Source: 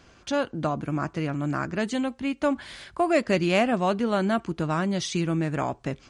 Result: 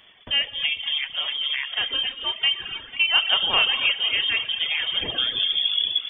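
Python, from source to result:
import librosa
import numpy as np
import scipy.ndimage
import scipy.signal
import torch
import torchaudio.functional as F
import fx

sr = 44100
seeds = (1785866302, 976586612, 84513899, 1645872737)

p1 = fx.tape_stop_end(x, sr, length_s=1.19)
p2 = fx.freq_invert(p1, sr, carrier_hz=3400)
p3 = p2 + fx.echo_swing(p2, sr, ms=823, ratio=1.5, feedback_pct=37, wet_db=-12.5, dry=0)
p4 = fx.rev_gated(p3, sr, seeds[0], gate_ms=340, shape='flat', drr_db=2.0)
p5 = fx.dereverb_blind(p4, sr, rt60_s=1.5)
y = F.gain(torch.from_numpy(p5), 1.5).numpy()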